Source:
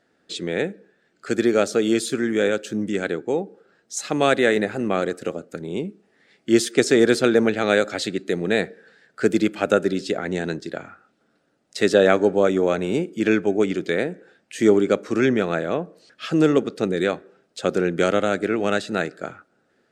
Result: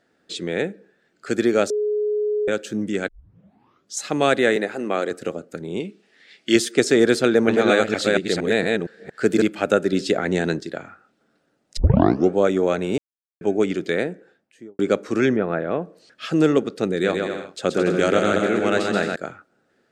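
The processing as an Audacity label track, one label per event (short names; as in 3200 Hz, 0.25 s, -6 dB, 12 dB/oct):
1.700000	2.480000	bleep 420 Hz -19 dBFS
3.080000	3.080000	tape start 0.90 s
4.560000	5.110000	HPF 270 Hz
5.800000	6.560000	weighting filter D
7.250000	9.420000	reverse delay 0.231 s, level -1.5 dB
9.930000	10.630000	gain +4 dB
11.770000	11.770000	tape start 0.55 s
12.980000	13.410000	mute
14.030000	14.790000	studio fade out
15.350000	15.800000	LPF 1300 Hz -> 2600 Hz
16.910000	19.160000	bouncing-ball echo first gap 0.13 s, each gap 0.7×, echoes 6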